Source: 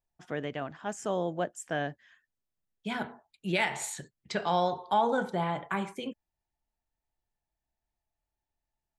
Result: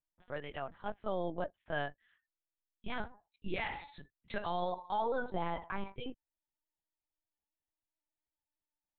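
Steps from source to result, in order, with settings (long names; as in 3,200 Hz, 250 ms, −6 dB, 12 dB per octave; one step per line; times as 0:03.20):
noise reduction from a noise print of the clip's start 8 dB
brickwall limiter −22.5 dBFS, peak gain reduction 8 dB
linear-prediction vocoder at 8 kHz pitch kept
level −3 dB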